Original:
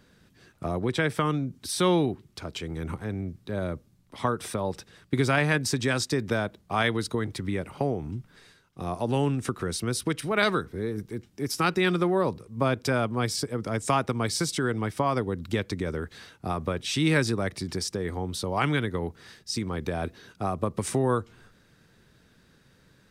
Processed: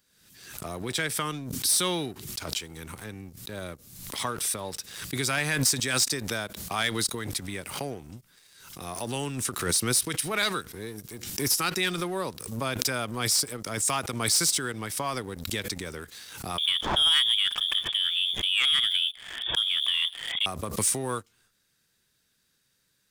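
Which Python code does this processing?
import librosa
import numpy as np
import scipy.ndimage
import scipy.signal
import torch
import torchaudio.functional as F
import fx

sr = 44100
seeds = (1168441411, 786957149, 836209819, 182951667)

y = fx.freq_invert(x, sr, carrier_hz=3500, at=(16.58, 20.46))
y = F.preemphasis(torch.from_numpy(y), 0.9).numpy()
y = fx.leveller(y, sr, passes=2)
y = fx.pre_swell(y, sr, db_per_s=59.0)
y = y * librosa.db_to_amplitude(3.5)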